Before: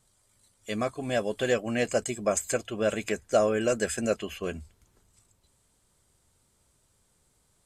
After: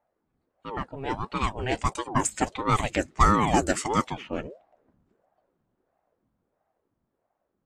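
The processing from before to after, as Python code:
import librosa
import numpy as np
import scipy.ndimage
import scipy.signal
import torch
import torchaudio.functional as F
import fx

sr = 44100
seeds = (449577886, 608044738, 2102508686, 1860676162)

y = fx.doppler_pass(x, sr, speed_mps=20, closest_m=23.0, pass_at_s=3.16)
y = fx.env_lowpass(y, sr, base_hz=1200.0, full_db=-23.5)
y = fx.ring_lfo(y, sr, carrier_hz=430.0, swing_pct=70, hz=1.5)
y = y * librosa.db_to_amplitude(7.0)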